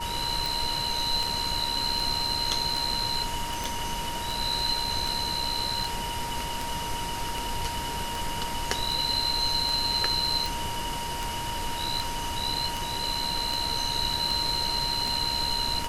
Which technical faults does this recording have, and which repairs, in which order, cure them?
tick 78 rpm
tone 940 Hz -33 dBFS
3.64 pop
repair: de-click; notch 940 Hz, Q 30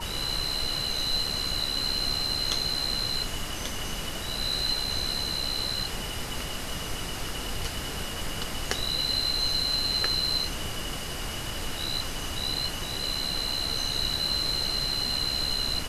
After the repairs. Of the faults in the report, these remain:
none

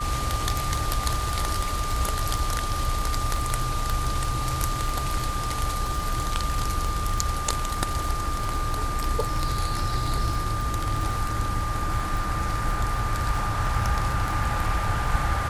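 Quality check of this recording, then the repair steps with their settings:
crackle 24/s -28 dBFS
tone 1200 Hz -30 dBFS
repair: de-click; notch 1200 Hz, Q 30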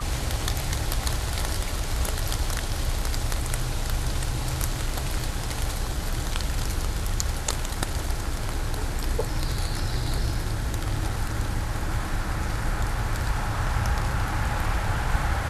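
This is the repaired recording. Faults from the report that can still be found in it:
none

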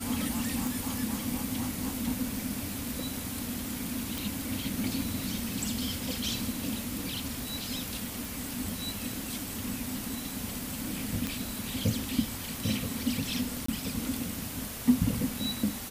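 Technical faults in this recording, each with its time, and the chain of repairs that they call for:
0.67 pop
4.18 pop
8.25 pop
11.27 pop
13.66–13.68 gap 24 ms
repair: de-click; interpolate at 13.66, 24 ms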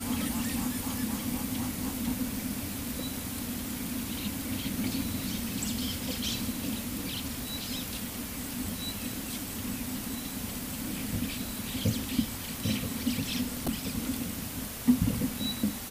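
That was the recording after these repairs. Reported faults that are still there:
none

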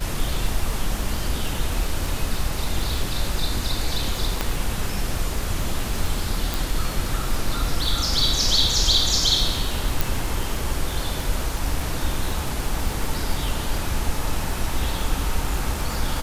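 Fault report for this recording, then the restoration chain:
crackle 34/s -25 dBFS
4.41 pop -7 dBFS
6.54 pop
10.01 pop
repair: de-click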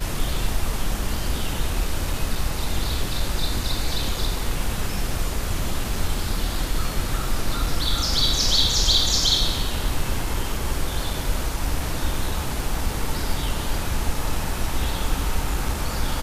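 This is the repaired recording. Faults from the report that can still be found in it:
4.41 pop
10.01 pop

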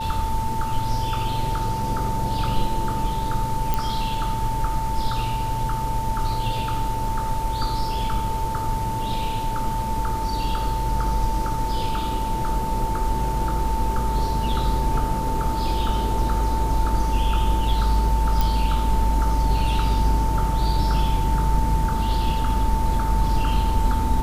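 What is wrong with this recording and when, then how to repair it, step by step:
tone 890 Hz -26 dBFS
3.74 pop -8 dBFS
18.41 pop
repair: de-click; notch 890 Hz, Q 30

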